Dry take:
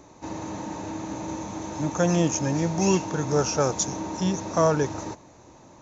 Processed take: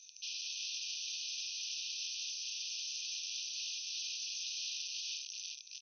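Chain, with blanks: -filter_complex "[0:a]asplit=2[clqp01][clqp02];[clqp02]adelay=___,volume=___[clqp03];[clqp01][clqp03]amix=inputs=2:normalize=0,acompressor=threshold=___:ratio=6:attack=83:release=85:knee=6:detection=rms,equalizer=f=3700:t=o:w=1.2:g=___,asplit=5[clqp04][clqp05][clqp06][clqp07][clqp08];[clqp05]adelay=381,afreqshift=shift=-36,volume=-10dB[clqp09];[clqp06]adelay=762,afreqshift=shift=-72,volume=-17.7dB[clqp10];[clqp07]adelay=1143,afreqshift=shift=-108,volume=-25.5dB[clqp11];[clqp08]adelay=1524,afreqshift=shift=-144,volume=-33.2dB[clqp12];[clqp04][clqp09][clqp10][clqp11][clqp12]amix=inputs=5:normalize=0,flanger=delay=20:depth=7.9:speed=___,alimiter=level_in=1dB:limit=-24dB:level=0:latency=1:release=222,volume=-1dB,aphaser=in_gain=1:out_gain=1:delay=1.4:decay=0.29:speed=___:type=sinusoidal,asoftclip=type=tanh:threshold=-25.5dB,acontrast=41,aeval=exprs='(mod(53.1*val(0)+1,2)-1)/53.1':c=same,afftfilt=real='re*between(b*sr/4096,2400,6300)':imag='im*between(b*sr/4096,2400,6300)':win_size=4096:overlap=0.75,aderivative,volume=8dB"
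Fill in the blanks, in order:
40, -11dB, -32dB, -4.5, 2.3, 0.52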